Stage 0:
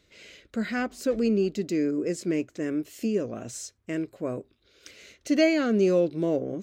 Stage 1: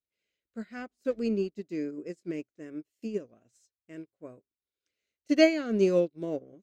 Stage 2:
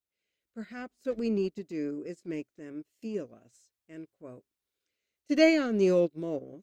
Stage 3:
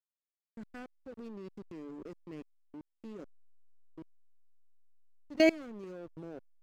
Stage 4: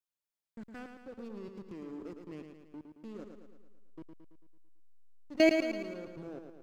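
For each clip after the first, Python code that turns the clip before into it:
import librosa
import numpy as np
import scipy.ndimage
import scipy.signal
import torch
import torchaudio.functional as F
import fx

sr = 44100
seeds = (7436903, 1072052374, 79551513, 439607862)

y1 = fx.upward_expand(x, sr, threshold_db=-43.0, expansion=2.5)
y1 = y1 * librosa.db_to_amplitude(2.5)
y2 = fx.transient(y1, sr, attack_db=-3, sustain_db=6)
y3 = fx.level_steps(y2, sr, step_db=21)
y3 = fx.backlash(y3, sr, play_db=-40.5)
y4 = fx.echo_feedback(y3, sr, ms=111, feedback_pct=55, wet_db=-6.5)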